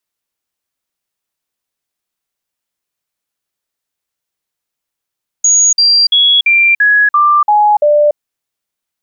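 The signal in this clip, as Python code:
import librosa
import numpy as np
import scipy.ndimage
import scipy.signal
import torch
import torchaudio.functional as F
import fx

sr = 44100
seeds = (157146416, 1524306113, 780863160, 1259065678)

y = fx.stepped_sweep(sr, from_hz=6700.0, direction='down', per_octave=2, tones=8, dwell_s=0.29, gap_s=0.05, level_db=-5.5)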